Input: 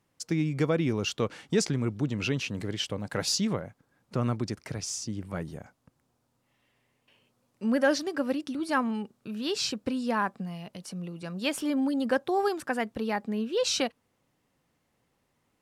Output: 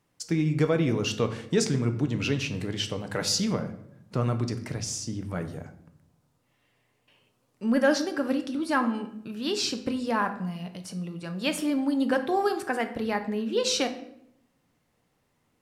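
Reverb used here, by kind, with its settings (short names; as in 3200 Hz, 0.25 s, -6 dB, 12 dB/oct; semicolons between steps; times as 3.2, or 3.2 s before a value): shoebox room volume 170 m³, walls mixed, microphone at 0.44 m; gain +1 dB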